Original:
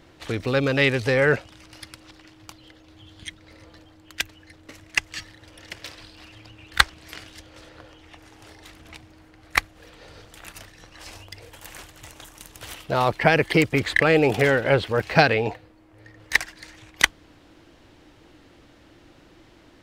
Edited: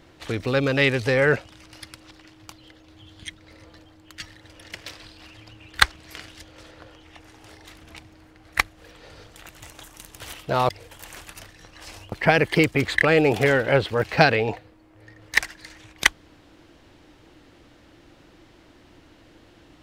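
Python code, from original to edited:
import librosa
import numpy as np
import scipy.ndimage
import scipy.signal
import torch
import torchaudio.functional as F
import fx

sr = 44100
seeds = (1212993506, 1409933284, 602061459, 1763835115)

y = fx.edit(x, sr, fx.cut(start_s=4.2, length_s=0.98),
    fx.swap(start_s=10.47, length_s=0.84, other_s=11.9, other_length_s=1.2), tone=tone)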